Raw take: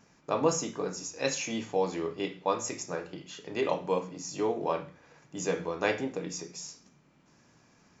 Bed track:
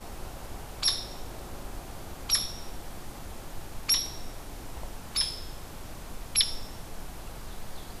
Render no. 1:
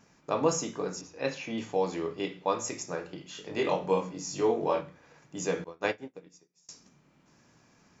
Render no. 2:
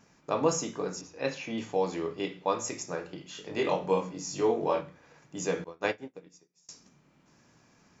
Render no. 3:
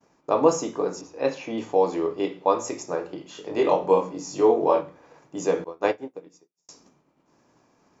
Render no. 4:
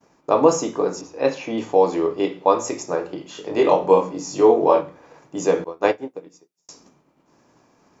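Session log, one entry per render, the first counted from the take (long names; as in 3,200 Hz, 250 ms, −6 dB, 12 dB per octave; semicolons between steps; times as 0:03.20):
0:01.01–0:01.58: high-frequency loss of the air 220 metres; 0:03.33–0:04.81: double-tracking delay 21 ms −2.5 dB; 0:05.64–0:06.69: expander for the loud parts 2.5 to 1, over −47 dBFS
no processing that can be heard
downward expander −57 dBFS; flat-topped bell 560 Hz +8 dB 2.4 octaves
level +4.5 dB; brickwall limiter −2 dBFS, peak gain reduction 1.5 dB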